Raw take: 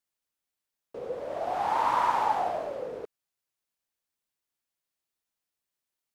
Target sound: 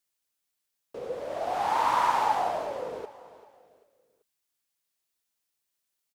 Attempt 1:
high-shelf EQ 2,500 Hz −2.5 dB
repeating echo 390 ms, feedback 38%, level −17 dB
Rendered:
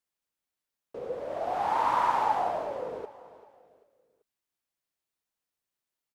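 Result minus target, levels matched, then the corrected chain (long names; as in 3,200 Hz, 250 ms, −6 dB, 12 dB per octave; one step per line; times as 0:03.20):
4,000 Hz band −5.0 dB
high-shelf EQ 2,500 Hz +6.5 dB
repeating echo 390 ms, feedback 38%, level −17 dB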